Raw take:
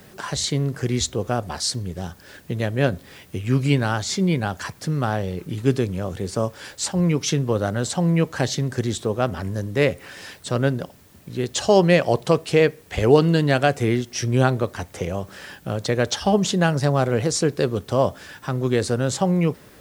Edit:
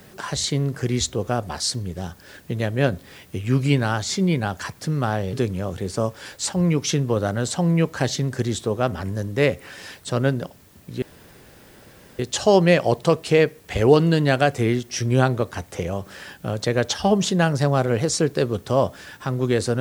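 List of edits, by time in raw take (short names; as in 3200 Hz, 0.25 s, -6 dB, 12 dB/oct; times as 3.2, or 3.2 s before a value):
5.33–5.72 cut
11.41 insert room tone 1.17 s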